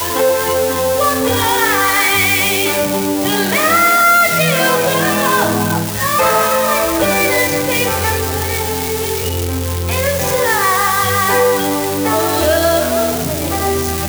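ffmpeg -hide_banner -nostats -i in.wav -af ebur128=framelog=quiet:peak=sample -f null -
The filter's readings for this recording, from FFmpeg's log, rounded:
Integrated loudness:
  I:         -13.6 LUFS
  Threshold: -23.6 LUFS
Loudness range:
  LRA:         3.8 LU
  Threshold: -33.5 LUFS
  LRA low:   -15.6 LUFS
  LRA high:  -11.8 LUFS
Sample peak:
  Peak:       -2.8 dBFS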